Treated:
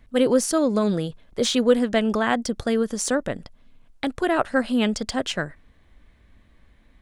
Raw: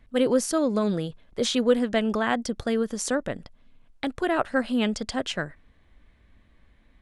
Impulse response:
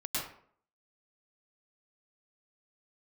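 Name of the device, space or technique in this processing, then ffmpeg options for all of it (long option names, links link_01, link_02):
exciter from parts: -filter_complex "[0:a]asplit=2[link_01][link_02];[link_02]highpass=3900,asoftclip=type=tanh:threshold=-35dB,volume=-8dB[link_03];[link_01][link_03]amix=inputs=2:normalize=0,volume=3dB"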